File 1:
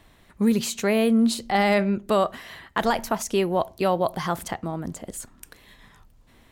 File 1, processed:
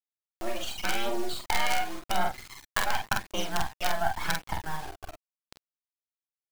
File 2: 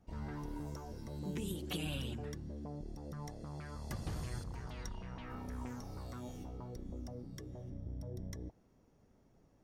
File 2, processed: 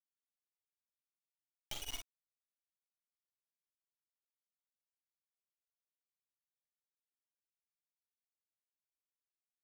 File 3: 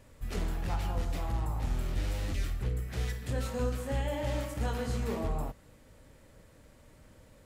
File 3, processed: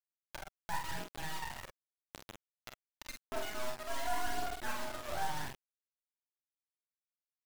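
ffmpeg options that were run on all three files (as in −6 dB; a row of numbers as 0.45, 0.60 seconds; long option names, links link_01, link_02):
-af "afftdn=noise_reduction=21:noise_floor=-35,aemphasis=mode=production:type=riaa,aecho=1:1:1.4:0.89,highpass=frequency=220:width_type=q:width=0.5412,highpass=frequency=220:width_type=q:width=1.307,lowpass=frequency=3300:width_type=q:width=0.5176,lowpass=frequency=3300:width_type=q:width=0.7071,lowpass=frequency=3300:width_type=q:width=1.932,afreqshift=130,acompressor=threshold=-26dB:ratio=3,acrusher=bits=4:dc=4:mix=0:aa=0.000001,aphaser=in_gain=1:out_gain=1:delay=1.8:decay=0.41:speed=0.89:type=triangular,aecho=1:1:33|46:0.168|0.668,acompressor=mode=upward:threshold=-40dB:ratio=2.5"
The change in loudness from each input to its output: −7.5, −1.0, −6.5 LU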